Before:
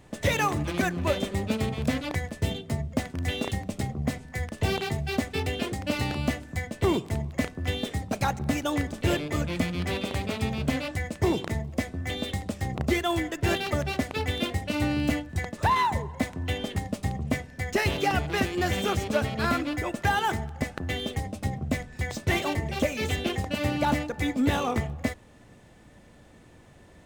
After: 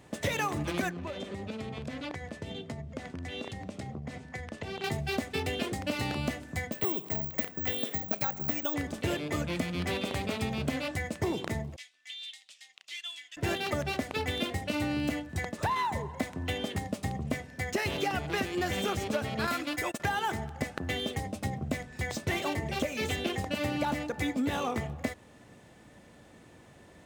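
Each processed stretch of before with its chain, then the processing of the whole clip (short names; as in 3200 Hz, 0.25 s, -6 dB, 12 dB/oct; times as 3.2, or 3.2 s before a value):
0.9–4.84 compressor 12:1, threshold -32 dBFS + air absorption 58 m
6.72–8.74 low shelf 85 Hz -11.5 dB + careless resampling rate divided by 2×, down filtered, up zero stuff
11.76–13.37 ladder band-pass 3600 Hz, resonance 40% + high shelf 4600 Hz +9.5 dB
19.47–20 gate -33 dBFS, range -20 dB + tilt +2 dB/oct
whole clip: HPF 120 Hz 6 dB/oct; compressor, threshold -27 dBFS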